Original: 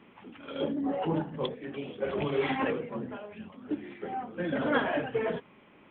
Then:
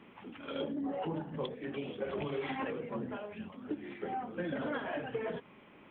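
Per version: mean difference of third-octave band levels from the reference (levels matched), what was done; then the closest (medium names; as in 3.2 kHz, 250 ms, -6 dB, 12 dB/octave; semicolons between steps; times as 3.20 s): 2.5 dB: compression 10:1, threshold -33 dBFS, peak gain reduction 12.5 dB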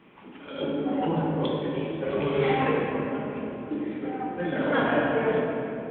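4.5 dB: simulated room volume 150 m³, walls hard, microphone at 0.61 m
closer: first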